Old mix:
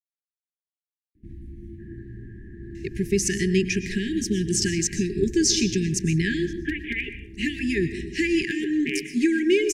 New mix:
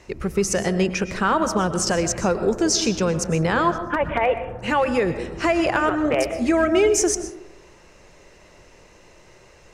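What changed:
speech: entry −2.75 s
first sound: entry −1.15 s
master: remove linear-phase brick-wall band-stop 420–1,600 Hz

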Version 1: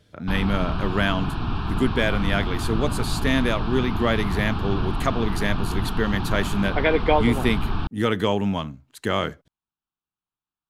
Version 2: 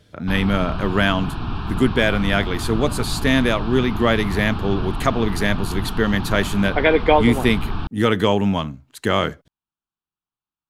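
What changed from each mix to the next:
speech +4.5 dB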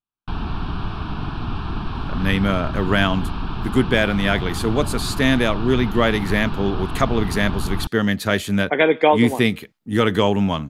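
speech: entry +1.95 s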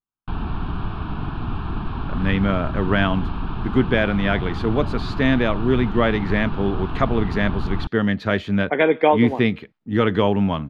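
master: add high-frequency loss of the air 260 metres

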